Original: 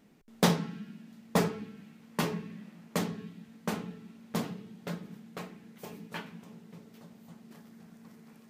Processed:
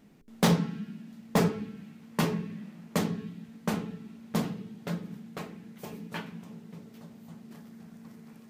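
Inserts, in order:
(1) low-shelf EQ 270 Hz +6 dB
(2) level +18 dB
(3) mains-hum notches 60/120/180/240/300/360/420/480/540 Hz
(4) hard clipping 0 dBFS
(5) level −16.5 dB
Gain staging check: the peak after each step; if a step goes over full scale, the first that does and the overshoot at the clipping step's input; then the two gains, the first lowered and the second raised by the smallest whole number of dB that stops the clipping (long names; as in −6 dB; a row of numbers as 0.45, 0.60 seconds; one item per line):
−10.5, +7.5, +7.0, 0.0, −16.5 dBFS
step 2, 7.0 dB
step 2 +11 dB, step 5 −9.5 dB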